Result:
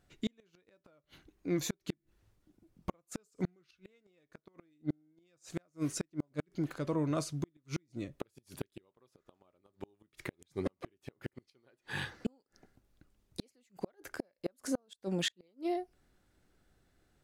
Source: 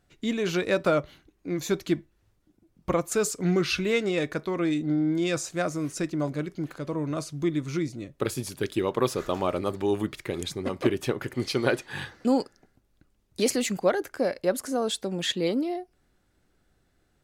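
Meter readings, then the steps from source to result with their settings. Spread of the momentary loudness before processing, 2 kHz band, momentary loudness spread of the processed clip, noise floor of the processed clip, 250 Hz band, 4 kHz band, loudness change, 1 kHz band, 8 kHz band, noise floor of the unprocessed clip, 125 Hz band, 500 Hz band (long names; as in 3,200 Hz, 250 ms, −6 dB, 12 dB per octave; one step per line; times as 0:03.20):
7 LU, −13.5 dB, 15 LU, −83 dBFS, −11.5 dB, −11.5 dB, −12.0 dB, −14.5 dB, −12.0 dB, −69 dBFS, −9.5 dB, −16.0 dB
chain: gate with flip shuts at −19 dBFS, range −41 dB
level −2.5 dB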